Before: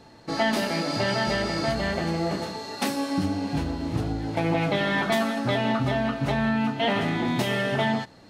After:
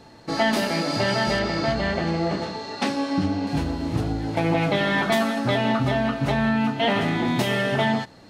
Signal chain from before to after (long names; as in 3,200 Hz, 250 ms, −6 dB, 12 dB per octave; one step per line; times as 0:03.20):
0:01.39–0:03.47: low-pass filter 5,300 Hz 12 dB per octave
level +2.5 dB